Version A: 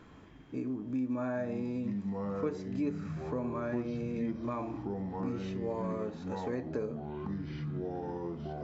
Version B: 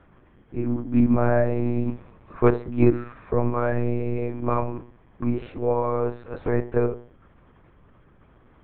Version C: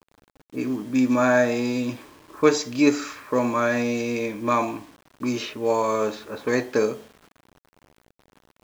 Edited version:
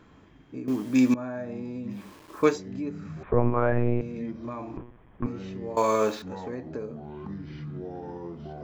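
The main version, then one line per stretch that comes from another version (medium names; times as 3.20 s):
A
0.68–1.14 s: from C
2.01–2.49 s: from C, crossfade 0.24 s
3.23–4.01 s: from B
4.77–5.26 s: from B
5.77–6.22 s: from C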